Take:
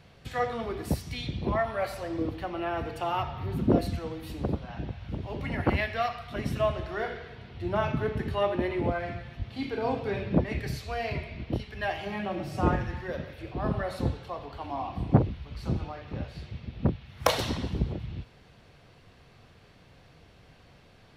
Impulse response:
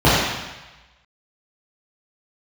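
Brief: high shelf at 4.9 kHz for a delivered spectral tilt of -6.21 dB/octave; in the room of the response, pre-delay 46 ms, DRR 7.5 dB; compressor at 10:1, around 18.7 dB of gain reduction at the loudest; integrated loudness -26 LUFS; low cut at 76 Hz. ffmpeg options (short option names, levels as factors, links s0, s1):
-filter_complex "[0:a]highpass=76,highshelf=f=4900:g=-8,acompressor=threshold=0.02:ratio=10,asplit=2[s0][s1];[1:a]atrim=start_sample=2205,adelay=46[s2];[s1][s2]afir=irnorm=-1:irlink=0,volume=0.0188[s3];[s0][s3]amix=inputs=2:normalize=0,volume=3.76"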